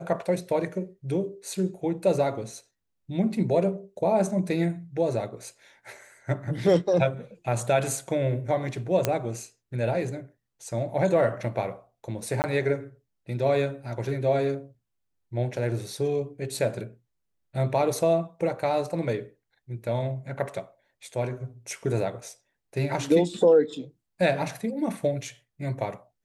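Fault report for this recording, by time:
9.05 s: pop -8 dBFS
12.42–12.44 s: dropout 19 ms

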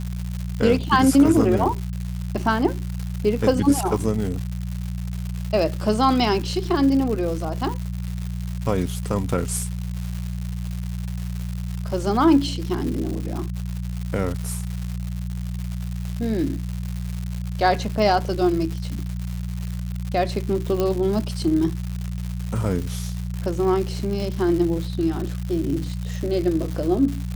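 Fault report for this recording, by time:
crackle 250 per s -28 dBFS
hum 60 Hz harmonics 3 -28 dBFS
20.80 s: pop -10 dBFS

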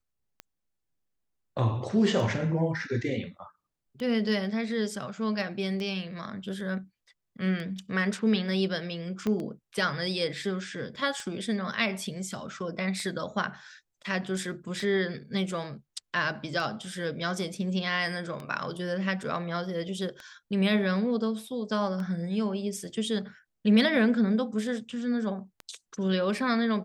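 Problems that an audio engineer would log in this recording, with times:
tick 33 1/3 rpm -24 dBFS
9.27 s: pop -18 dBFS

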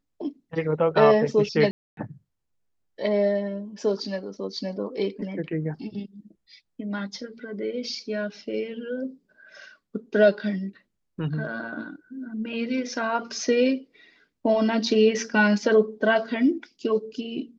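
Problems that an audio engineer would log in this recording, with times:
1.71–1.97 s: dropout 262 ms

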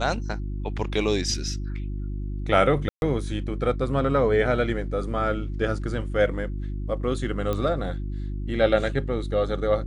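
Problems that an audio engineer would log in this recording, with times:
hum 50 Hz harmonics 7 -30 dBFS
2.89–3.02 s: dropout 131 ms
7.53 s: pop -15 dBFS

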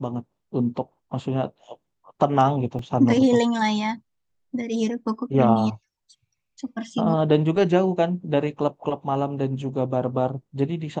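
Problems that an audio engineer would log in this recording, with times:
2.79 s: dropout 2.6 ms

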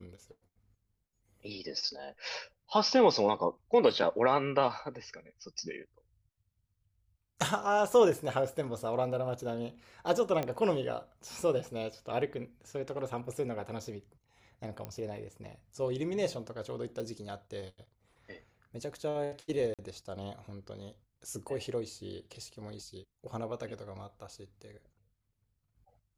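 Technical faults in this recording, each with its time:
10.43 s: pop -20 dBFS
14.85 s: pop -25 dBFS
17.00 s: pop -28 dBFS
19.74–19.79 s: dropout 47 ms

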